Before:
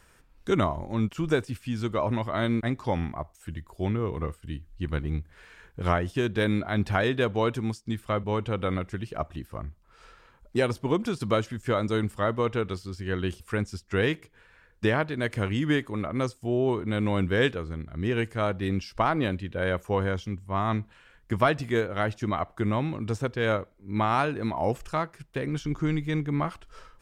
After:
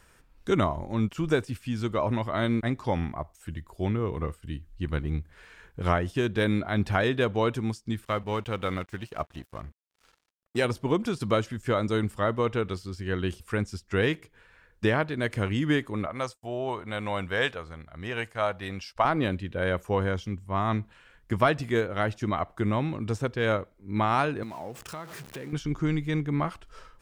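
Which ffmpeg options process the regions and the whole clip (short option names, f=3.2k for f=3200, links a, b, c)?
-filter_complex "[0:a]asettb=1/sr,asplit=3[a][b][c];[a]atrim=end=8.054[d];[b]atrim=start=8.05:end=10.65,asetpts=PTS-STARTPTS,afade=t=in:d=0.004:c=qsin,afade=t=out:st=2.596:d=0.004:c=qsin,tiltshelf=f=930:g=-3,aeval=exprs='sgn(val(0))*max(abs(val(0))-0.00355,0)':c=same[e];[c]atrim=start=10.646[f];[d][e]acrossfade=d=0.004:c1=hsin:c2=qsin[g];[g][f]acrossfade=d=0.004:c1=qsin:c2=hsin,asettb=1/sr,asplit=3[h][i][j];[h]atrim=end=16.064[k];[i]atrim=start=16.06:end=19.05,asetpts=PTS-STARTPTS,afade=t=in:d=0.004:c=qsin,afade=t=out:st=2.986:d=0.004:c=qsin,agate=range=-33dB:threshold=-42dB:ratio=3:release=100:detection=peak,lowshelf=f=480:t=q:w=1.5:g=-8.5[l];[j]atrim=start=19.046[m];[k][l]acrossfade=d=0.004:c1=hsin:c2=qsin[n];[n][m]acrossfade=d=0.004:c1=qsin:c2=hsin,asettb=1/sr,asplit=3[o][p][q];[o]atrim=end=24.434[r];[p]atrim=start=24.43:end=25.53,asetpts=PTS-STARTPTS,afade=t=in:d=0.004:c=qsin,afade=t=out:st=1.096:d=0.004:c=qsin,aeval=exprs='val(0)+0.5*0.0158*sgn(val(0))':c=same,highpass=110,acompressor=threshold=-38dB:ratio=3:attack=3.2:release=140:knee=1:detection=peak[s];[q]atrim=start=25.526[t];[r][s]acrossfade=d=0.004:c1=hsin:c2=qsin[u];[u][t]acrossfade=d=0.004:c1=qsin:c2=hsin"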